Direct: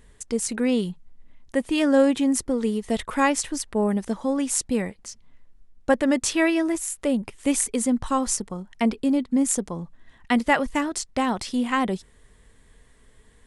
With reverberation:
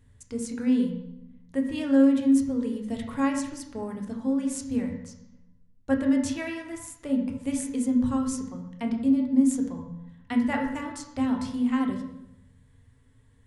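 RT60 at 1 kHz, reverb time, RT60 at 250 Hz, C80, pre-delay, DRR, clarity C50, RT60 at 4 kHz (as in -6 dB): 0.80 s, 0.85 s, 1.1 s, 7.5 dB, 3 ms, 1.5 dB, 5.0 dB, 0.65 s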